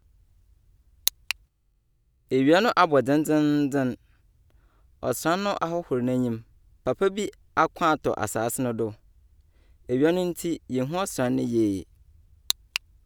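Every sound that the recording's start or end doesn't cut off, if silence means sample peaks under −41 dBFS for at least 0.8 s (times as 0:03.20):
0:01.07–0:01.32
0:02.29–0:03.95
0:05.03–0:08.94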